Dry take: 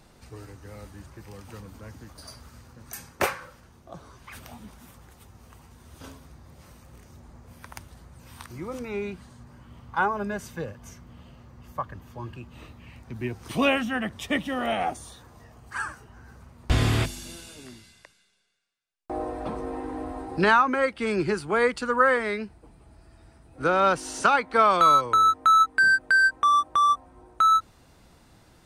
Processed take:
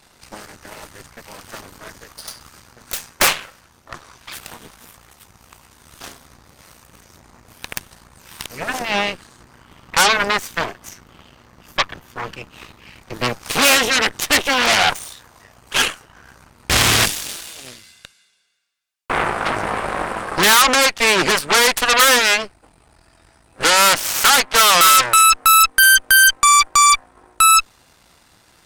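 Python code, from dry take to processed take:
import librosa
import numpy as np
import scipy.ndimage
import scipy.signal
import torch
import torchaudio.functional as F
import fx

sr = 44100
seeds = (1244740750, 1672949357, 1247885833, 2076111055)

y = fx.fold_sine(x, sr, drive_db=8, ceiling_db=-7.0)
y = fx.cheby_harmonics(y, sr, harmonics=(6, 7), levels_db=(-6, -13), full_scale_db=-6.5)
y = fx.tilt_shelf(y, sr, db=-6.0, hz=670.0)
y = F.gain(torch.from_numpy(y), -5.0).numpy()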